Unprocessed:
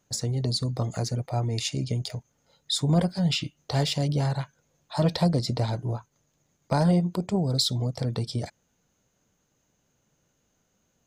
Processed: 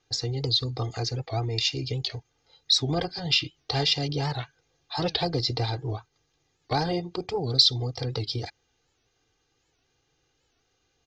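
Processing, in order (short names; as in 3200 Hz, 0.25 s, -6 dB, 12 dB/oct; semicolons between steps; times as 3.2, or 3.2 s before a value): steep low-pass 5300 Hz 36 dB/oct; high shelf 2500 Hz +10.5 dB; comb 2.5 ms, depth 96%; record warp 78 rpm, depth 160 cents; gain -3.5 dB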